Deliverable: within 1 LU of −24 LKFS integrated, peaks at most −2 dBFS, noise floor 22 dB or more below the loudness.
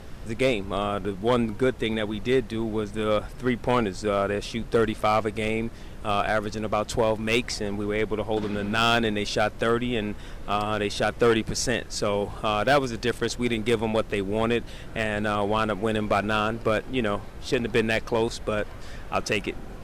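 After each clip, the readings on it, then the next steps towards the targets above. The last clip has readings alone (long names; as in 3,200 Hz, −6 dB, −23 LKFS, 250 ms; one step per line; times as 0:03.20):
share of clipped samples 0.5%; peaks flattened at −14.0 dBFS; background noise floor −40 dBFS; target noise floor −48 dBFS; integrated loudness −26.0 LKFS; sample peak −14.0 dBFS; target loudness −24.0 LKFS
→ clipped peaks rebuilt −14 dBFS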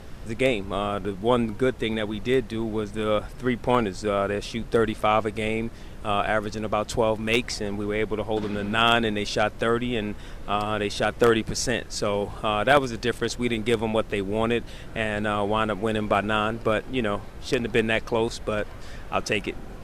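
share of clipped samples 0.0%; background noise floor −40 dBFS; target noise floor −48 dBFS
→ noise reduction from a noise print 8 dB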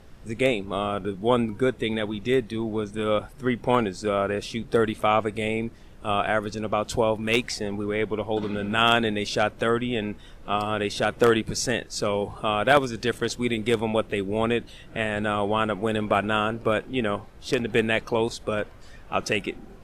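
background noise floor −46 dBFS; target noise floor −48 dBFS
→ noise reduction from a noise print 6 dB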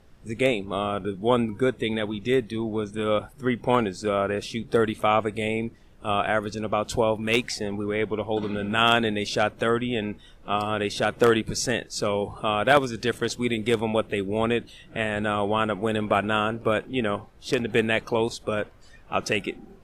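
background noise floor −51 dBFS; integrated loudness −25.5 LKFS; sample peak −5.0 dBFS; target loudness −24.0 LKFS
→ level +1.5 dB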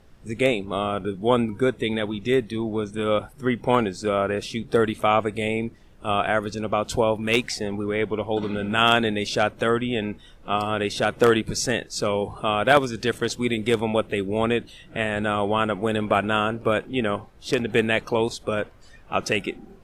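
integrated loudness −24.0 LKFS; sample peak −3.5 dBFS; background noise floor −49 dBFS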